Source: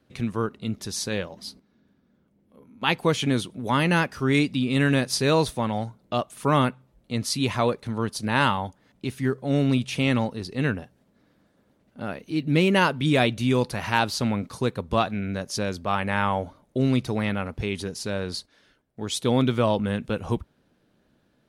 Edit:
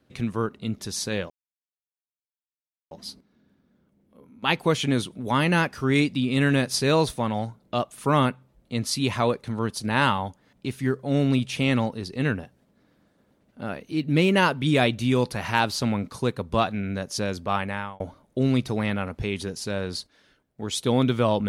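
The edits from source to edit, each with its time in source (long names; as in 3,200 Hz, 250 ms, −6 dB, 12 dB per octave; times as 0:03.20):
0:01.30: splice in silence 1.61 s
0:15.93–0:16.39: fade out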